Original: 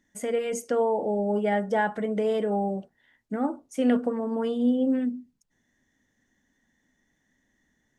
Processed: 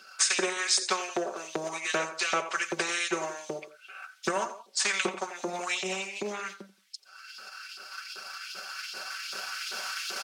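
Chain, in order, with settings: recorder AGC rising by 7.4 dB/s; transient shaper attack +6 dB, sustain -7 dB; LFO high-pass saw up 3.3 Hz 450–5000 Hz; treble shelf 2.3 kHz +11 dB; comb 4.1 ms, depth 84%; tape speed -22%; frequency weighting A; on a send: feedback delay 87 ms, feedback 28%, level -21.5 dB; on the sum: spectrum-flattening compressor 2:1; trim -2.5 dB

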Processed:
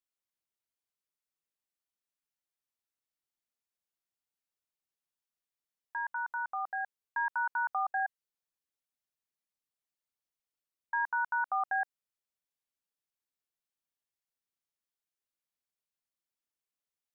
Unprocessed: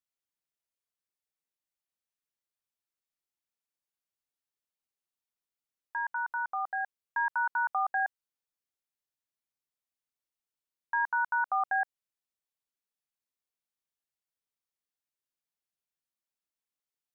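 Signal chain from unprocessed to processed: 7.83–10.95 s: resonances exaggerated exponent 1.5; trim -2.5 dB

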